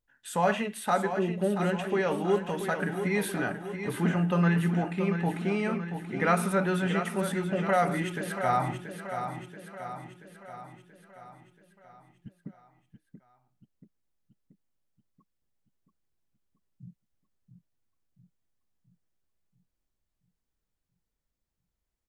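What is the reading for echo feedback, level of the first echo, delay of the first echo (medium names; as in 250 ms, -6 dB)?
55%, -8.5 dB, 681 ms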